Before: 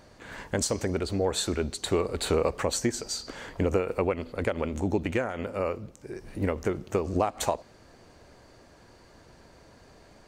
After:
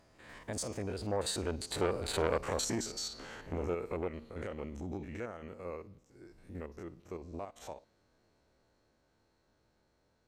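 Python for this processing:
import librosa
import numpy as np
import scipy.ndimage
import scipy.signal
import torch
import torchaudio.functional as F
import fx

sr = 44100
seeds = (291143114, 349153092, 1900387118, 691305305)

y = fx.spec_steps(x, sr, hold_ms=50)
y = fx.doppler_pass(y, sr, speed_mps=27, closest_m=25.0, pass_at_s=2.25)
y = fx.transformer_sat(y, sr, knee_hz=1000.0)
y = y * 10.0 ** (-1.0 / 20.0)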